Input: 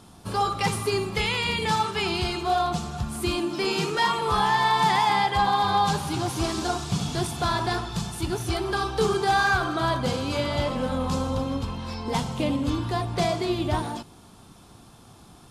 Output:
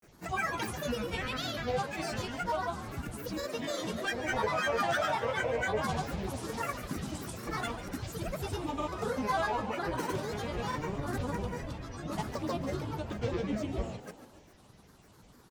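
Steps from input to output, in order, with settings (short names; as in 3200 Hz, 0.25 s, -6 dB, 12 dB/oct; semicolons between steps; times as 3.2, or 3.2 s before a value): dynamic EQ 4200 Hz, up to -5 dB, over -43 dBFS, Q 1.2; grains, pitch spread up and down by 12 st; frequency-shifting echo 0.142 s, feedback 54%, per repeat +64 Hz, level -13 dB; gain -7.5 dB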